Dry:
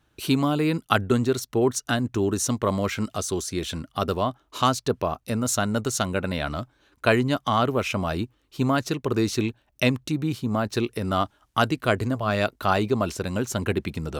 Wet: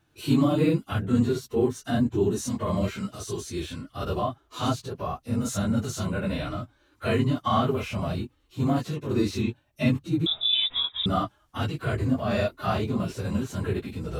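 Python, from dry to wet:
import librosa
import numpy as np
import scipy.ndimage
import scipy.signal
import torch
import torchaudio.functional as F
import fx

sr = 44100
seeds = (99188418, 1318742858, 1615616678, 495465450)

y = fx.phase_scramble(x, sr, seeds[0], window_ms=50)
y = fx.hpss(y, sr, part='percussive', gain_db=-17)
y = fx.freq_invert(y, sr, carrier_hz=3700, at=(10.26, 11.06))
y = y * librosa.db_to_amplitude(2.5)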